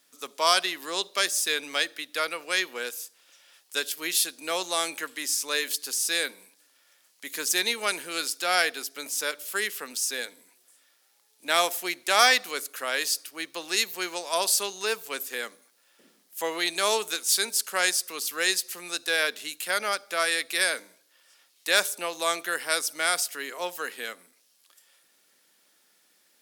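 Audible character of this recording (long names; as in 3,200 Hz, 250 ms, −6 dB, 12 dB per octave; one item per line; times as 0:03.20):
background noise floor −65 dBFS
spectral slope −0.5 dB per octave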